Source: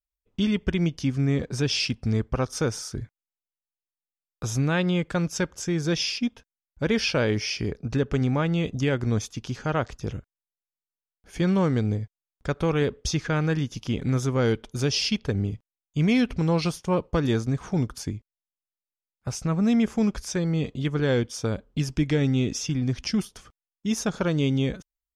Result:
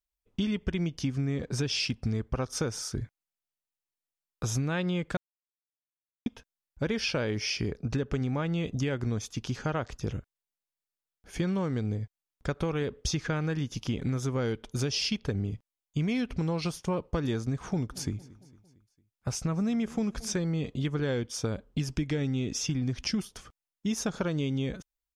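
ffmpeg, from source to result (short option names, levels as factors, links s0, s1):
-filter_complex "[0:a]asplit=3[s0][s1][s2];[s0]afade=t=out:st=17.89:d=0.02[s3];[s1]aecho=1:1:227|454|681|908:0.0708|0.0382|0.0206|0.0111,afade=t=in:st=17.89:d=0.02,afade=t=out:st=20.44:d=0.02[s4];[s2]afade=t=in:st=20.44:d=0.02[s5];[s3][s4][s5]amix=inputs=3:normalize=0,asplit=3[s6][s7][s8];[s6]atrim=end=5.17,asetpts=PTS-STARTPTS,afade=t=out:st=5.166:d=0.004:c=hsin[s9];[s7]atrim=start=5.17:end=6.26,asetpts=PTS-STARTPTS,volume=0[s10];[s8]atrim=start=6.26,asetpts=PTS-STARTPTS,afade=t=in:d=0.004:c=hsin[s11];[s9][s10][s11]concat=n=3:v=0:a=1,acompressor=threshold=0.0501:ratio=6"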